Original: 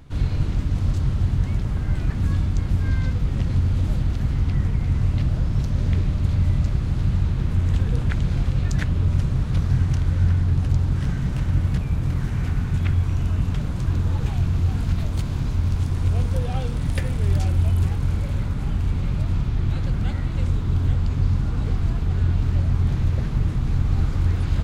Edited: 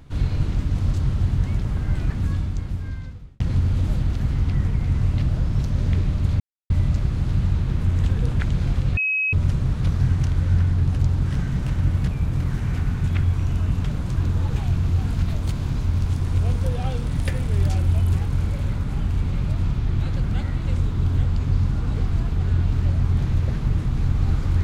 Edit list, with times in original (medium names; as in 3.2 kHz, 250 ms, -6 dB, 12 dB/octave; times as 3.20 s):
2.03–3.40 s: fade out
6.40 s: insert silence 0.30 s
8.67–9.03 s: bleep 2.55 kHz -19 dBFS